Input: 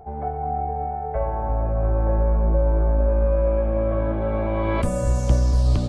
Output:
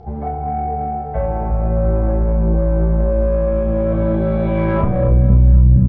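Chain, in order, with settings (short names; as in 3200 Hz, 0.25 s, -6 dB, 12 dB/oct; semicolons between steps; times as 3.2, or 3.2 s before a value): doubler 31 ms -5 dB; reverb RT60 0.30 s, pre-delay 5 ms, DRR 4 dB; low-pass sweep 4900 Hz -> 190 Hz, 4.38–5.39; compressor 2:1, threshold -16 dBFS, peak gain reduction 5.5 dB; soft clip -13 dBFS, distortion -17 dB; bell 120 Hz +12 dB 2.9 oct; split-band echo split 370 Hz, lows 0.358 s, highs 0.261 s, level -12.5 dB; gain -1 dB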